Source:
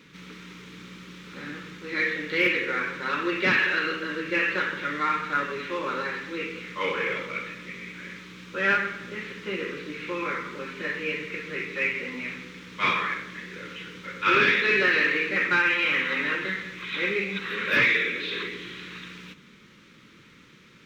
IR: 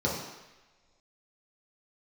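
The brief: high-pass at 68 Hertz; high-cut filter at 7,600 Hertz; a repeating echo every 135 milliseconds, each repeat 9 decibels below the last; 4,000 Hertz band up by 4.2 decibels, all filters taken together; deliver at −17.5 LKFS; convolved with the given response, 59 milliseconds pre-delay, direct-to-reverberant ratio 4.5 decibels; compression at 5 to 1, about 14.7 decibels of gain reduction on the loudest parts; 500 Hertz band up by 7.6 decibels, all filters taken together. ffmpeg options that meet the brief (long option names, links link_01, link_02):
-filter_complex "[0:a]highpass=68,lowpass=7600,equalizer=frequency=500:width_type=o:gain=9,equalizer=frequency=4000:width_type=o:gain=5.5,acompressor=threshold=-31dB:ratio=5,aecho=1:1:135|270|405|540:0.355|0.124|0.0435|0.0152,asplit=2[link_01][link_02];[1:a]atrim=start_sample=2205,adelay=59[link_03];[link_02][link_03]afir=irnorm=-1:irlink=0,volume=-15dB[link_04];[link_01][link_04]amix=inputs=2:normalize=0,volume=13.5dB"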